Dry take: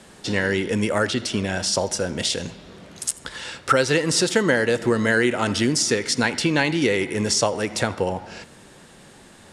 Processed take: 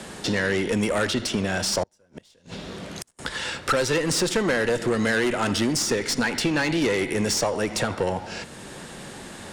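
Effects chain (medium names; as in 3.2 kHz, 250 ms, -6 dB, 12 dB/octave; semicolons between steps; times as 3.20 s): valve stage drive 18 dB, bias 0.35; 1.83–3.19 s: inverted gate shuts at -21 dBFS, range -38 dB; three bands compressed up and down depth 40%; trim +1.5 dB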